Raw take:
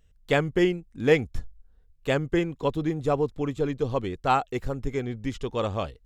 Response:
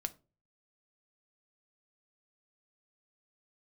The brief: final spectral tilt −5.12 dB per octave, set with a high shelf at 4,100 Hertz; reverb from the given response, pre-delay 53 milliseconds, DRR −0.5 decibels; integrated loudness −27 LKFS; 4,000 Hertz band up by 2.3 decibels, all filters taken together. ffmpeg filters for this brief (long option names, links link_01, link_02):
-filter_complex "[0:a]equalizer=frequency=4000:width_type=o:gain=7,highshelf=frequency=4100:gain=-7.5,asplit=2[link_01][link_02];[1:a]atrim=start_sample=2205,adelay=53[link_03];[link_02][link_03]afir=irnorm=-1:irlink=0,volume=1dB[link_04];[link_01][link_04]amix=inputs=2:normalize=0,volume=-3.5dB"